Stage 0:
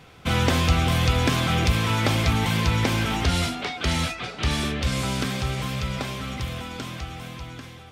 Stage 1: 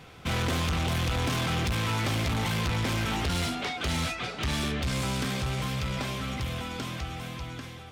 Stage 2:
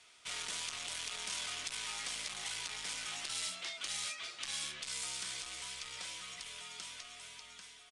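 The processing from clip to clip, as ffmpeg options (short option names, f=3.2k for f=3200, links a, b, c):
-af "asoftclip=type=tanh:threshold=-25dB"
-af "aderivative,afreqshift=-68,aresample=22050,aresample=44100"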